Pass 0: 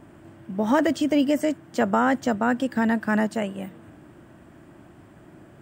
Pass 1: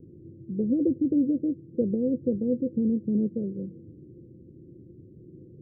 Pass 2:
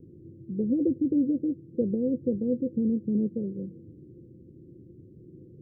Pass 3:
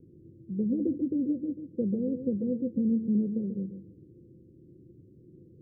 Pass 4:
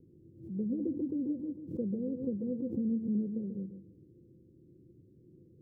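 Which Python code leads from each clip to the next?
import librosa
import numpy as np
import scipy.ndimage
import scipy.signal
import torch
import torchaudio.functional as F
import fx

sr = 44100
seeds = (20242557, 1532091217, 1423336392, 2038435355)

y1 = scipy.signal.sosfilt(scipy.signal.cheby1(6, 6, 520.0, 'lowpass', fs=sr, output='sos'), x)
y1 = y1 * librosa.db_to_amplitude(3.5)
y2 = fx.notch(y1, sr, hz=620.0, q=17.0)
y2 = y2 * librosa.db_to_amplitude(-1.0)
y3 = fx.dynamic_eq(y2, sr, hz=200.0, q=3.4, threshold_db=-41.0, ratio=4.0, max_db=6)
y3 = fx.echo_feedback(y3, sr, ms=138, feedback_pct=17, wet_db=-9.0)
y3 = y3 * librosa.db_to_amplitude(-5.0)
y4 = fx.pre_swell(y3, sr, db_per_s=110.0)
y4 = y4 * librosa.db_to_amplitude(-5.5)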